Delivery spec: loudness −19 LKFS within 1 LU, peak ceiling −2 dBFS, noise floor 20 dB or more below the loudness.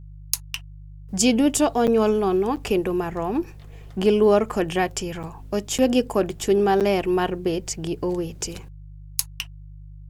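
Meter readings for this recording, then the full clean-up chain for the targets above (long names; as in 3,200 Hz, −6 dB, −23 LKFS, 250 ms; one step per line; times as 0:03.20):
number of dropouts 5; longest dropout 7.7 ms; mains hum 50 Hz; hum harmonics up to 150 Hz; level of the hum −39 dBFS; integrated loudness −22.5 LKFS; sample peak −2.5 dBFS; target loudness −19.0 LKFS
→ repair the gap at 0:01.87/0:02.56/0:05.23/0:05.78/0:06.80, 7.7 ms
hum removal 50 Hz, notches 3
level +3.5 dB
brickwall limiter −2 dBFS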